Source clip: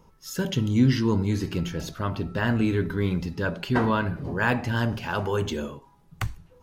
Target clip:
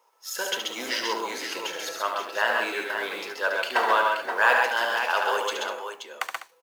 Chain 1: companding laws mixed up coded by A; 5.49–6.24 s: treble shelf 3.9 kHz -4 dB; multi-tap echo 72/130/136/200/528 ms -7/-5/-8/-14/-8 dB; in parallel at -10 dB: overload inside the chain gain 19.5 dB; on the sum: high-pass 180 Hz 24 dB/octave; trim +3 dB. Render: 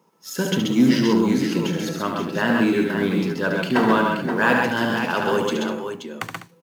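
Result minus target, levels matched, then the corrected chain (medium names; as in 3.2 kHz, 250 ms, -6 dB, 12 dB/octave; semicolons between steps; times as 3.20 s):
250 Hz band +19.0 dB
companding laws mixed up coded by A; 5.49–6.24 s: treble shelf 3.9 kHz -4 dB; multi-tap echo 72/130/136/200/528 ms -7/-5/-8/-14/-8 dB; in parallel at -10 dB: overload inside the chain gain 19.5 dB; on the sum: high-pass 560 Hz 24 dB/octave; trim +3 dB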